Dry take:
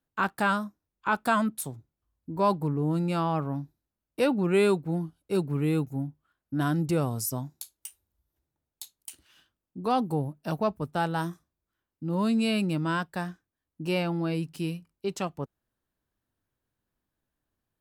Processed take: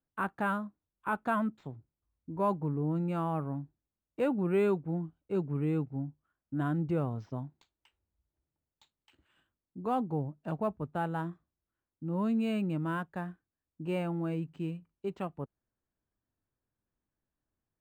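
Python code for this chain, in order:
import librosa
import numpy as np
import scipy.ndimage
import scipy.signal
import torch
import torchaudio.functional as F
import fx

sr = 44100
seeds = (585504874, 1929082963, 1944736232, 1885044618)

y = fx.air_absorb(x, sr, metres=390.0)
y = np.interp(np.arange(len(y)), np.arange(len(y))[::4], y[::4])
y = y * librosa.db_to_amplitude(-4.0)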